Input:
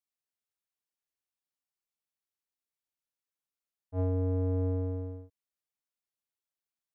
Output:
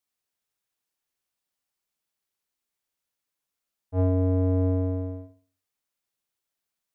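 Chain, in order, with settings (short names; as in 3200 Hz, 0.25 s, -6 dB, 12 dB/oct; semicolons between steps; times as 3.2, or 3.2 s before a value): flutter echo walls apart 10.6 m, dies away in 0.42 s; gain +7 dB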